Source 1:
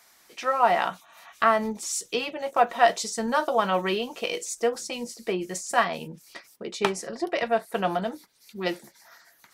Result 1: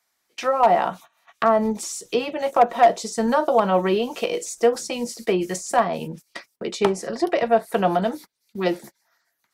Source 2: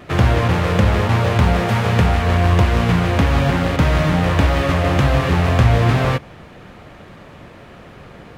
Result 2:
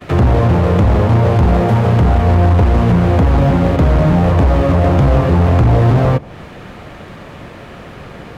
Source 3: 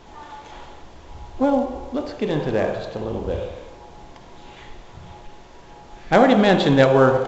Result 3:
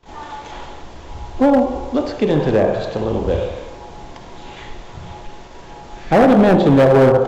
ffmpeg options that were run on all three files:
-filter_complex "[0:a]agate=range=0.0794:threshold=0.00562:ratio=16:detection=peak,acrossover=split=470|940[s0][s1][s2];[s2]acompressor=threshold=0.0158:ratio=16[s3];[s0][s1][s3]amix=inputs=3:normalize=0,asoftclip=type=hard:threshold=0.2,volume=2.24"

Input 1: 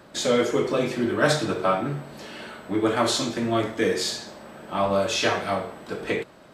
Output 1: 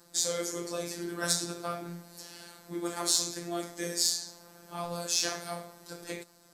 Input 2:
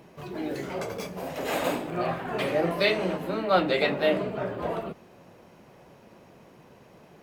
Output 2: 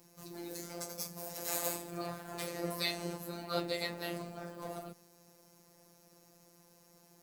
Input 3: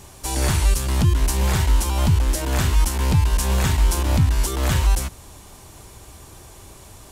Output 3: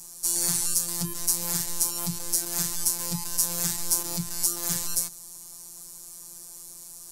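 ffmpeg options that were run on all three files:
-af "afftfilt=real='hypot(re,im)*cos(PI*b)':imag='0':win_size=1024:overlap=0.75,aexciter=amount=6.1:drive=6.7:freq=4400,volume=0.335"

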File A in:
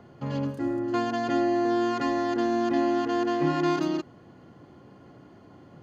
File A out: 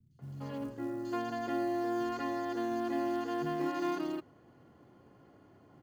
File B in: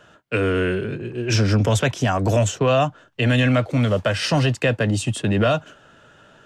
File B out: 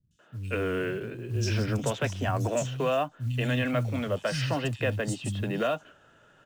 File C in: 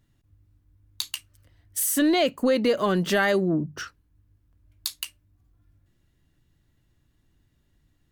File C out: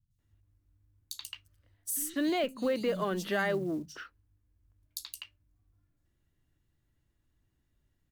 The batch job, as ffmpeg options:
-filter_complex "[0:a]acrossover=split=180|4100[s0][s1][s2];[s2]adelay=110[s3];[s1]adelay=190[s4];[s0][s4][s3]amix=inputs=3:normalize=0,acrusher=bits=8:mode=log:mix=0:aa=0.000001,volume=0.398"

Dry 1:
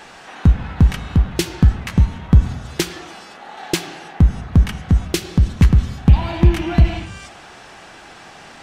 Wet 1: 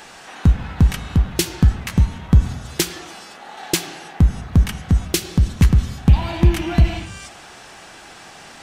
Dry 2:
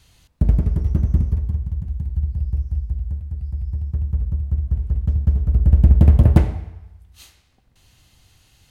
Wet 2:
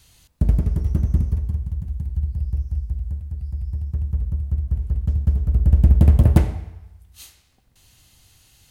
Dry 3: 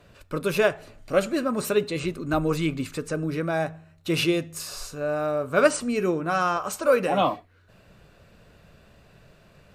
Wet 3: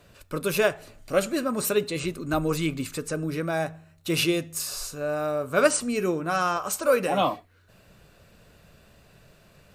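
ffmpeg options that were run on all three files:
-af "highshelf=f=5800:g=9.5,volume=0.841"

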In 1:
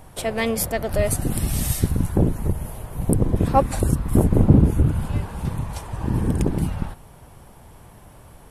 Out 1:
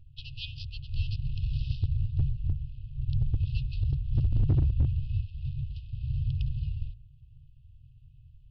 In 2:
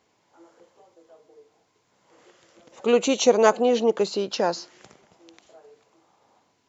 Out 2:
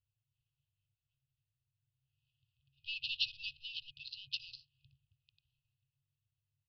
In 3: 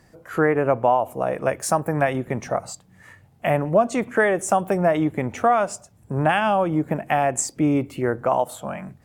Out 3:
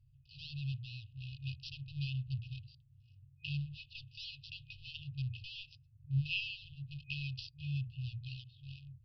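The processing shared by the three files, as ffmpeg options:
-af "adynamicsmooth=sensitivity=5.5:basefreq=980,afftfilt=real='re*(1-between(b*sr/4096,150,2500))':imag='im*(1-between(b*sr/4096,150,2500))':win_size=4096:overlap=0.75,bandreject=f=60:t=h:w=6,bandreject=f=120:t=h:w=6,bandreject=f=180:t=h:w=6,bandreject=f=240:t=h:w=6,bandreject=f=300:t=h:w=6,bandreject=f=360:t=h:w=6,bandreject=f=420:t=h:w=6,bandreject=f=480:t=h:w=6,bandreject=f=540:t=h:w=6,bandreject=f=600:t=h:w=6,aresample=11025,asoftclip=type=hard:threshold=0.2,aresample=44100,volume=0.596"

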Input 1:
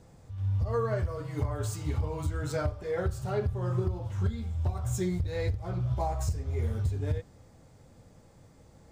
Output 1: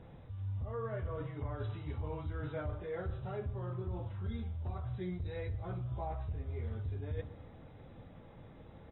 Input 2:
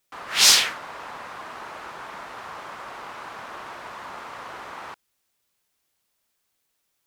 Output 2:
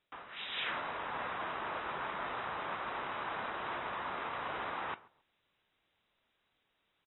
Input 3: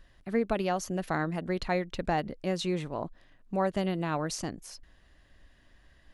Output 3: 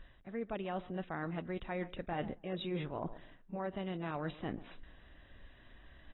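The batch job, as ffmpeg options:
-filter_complex "[0:a]asplit=2[s0][s1];[s1]adelay=137,lowpass=f=1400:p=1,volume=0.075,asplit=2[s2][s3];[s3]adelay=137,lowpass=f=1400:p=1,volume=0.27[s4];[s0][s2][s4]amix=inputs=3:normalize=0,areverse,acompressor=threshold=0.0126:ratio=8,areverse,volume=1.26" -ar 22050 -c:a aac -b:a 16k

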